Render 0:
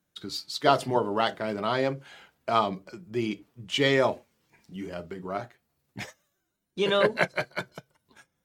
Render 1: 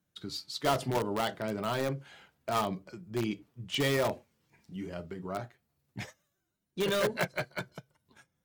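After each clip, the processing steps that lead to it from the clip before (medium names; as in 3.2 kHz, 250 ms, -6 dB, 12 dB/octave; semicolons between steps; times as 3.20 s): peaking EQ 110 Hz +6 dB 1.8 oct; in parallel at -6.5 dB: integer overflow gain 17.5 dB; on the sum: trim -8 dB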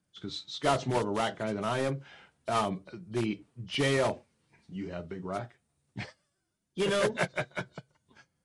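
knee-point frequency compression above 2.9 kHz 1.5:1; trim +1.5 dB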